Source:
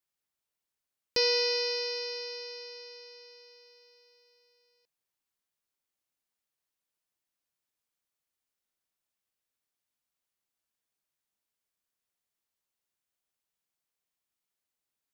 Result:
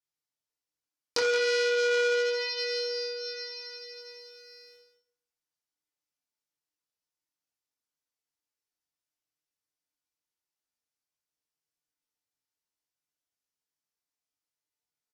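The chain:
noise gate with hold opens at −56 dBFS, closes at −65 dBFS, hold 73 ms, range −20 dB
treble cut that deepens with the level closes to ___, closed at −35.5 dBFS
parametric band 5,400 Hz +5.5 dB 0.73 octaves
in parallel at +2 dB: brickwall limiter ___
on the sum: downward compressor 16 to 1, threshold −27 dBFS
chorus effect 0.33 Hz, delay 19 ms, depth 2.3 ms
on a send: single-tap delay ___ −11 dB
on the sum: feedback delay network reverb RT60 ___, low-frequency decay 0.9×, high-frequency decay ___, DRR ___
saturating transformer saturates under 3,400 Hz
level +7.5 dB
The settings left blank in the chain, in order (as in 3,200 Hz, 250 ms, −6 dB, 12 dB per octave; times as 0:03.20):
2,500 Hz, −21.5 dBFS, 174 ms, 0.67 s, 0.5×, −0.5 dB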